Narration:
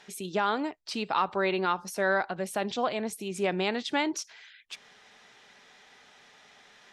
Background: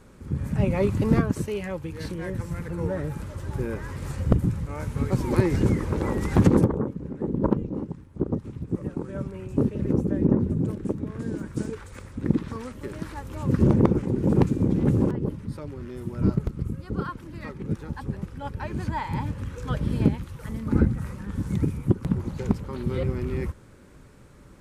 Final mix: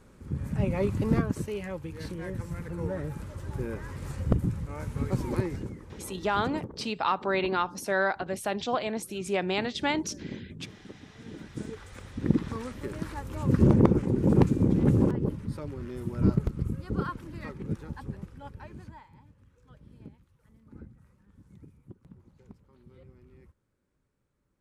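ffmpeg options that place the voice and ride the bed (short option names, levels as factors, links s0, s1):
-filter_complex "[0:a]adelay=5900,volume=1[s0];[1:a]volume=4.47,afade=t=out:st=5.2:d=0.5:silence=0.199526,afade=t=in:st=11.13:d=1.28:silence=0.133352,afade=t=out:st=17.09:d=2.02:silence=0.0501187[s1];[s0][s1]amix=inputs=2:normalize=0"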